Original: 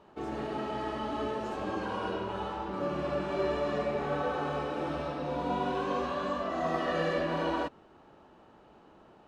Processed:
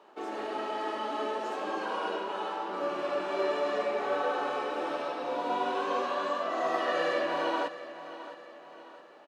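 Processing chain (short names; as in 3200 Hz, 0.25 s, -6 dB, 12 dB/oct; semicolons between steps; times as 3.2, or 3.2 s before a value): Bessel high-pass 420 Hz, order 4; feedback echo 0.663 s, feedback 45%, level -14 dB; gain +3 dB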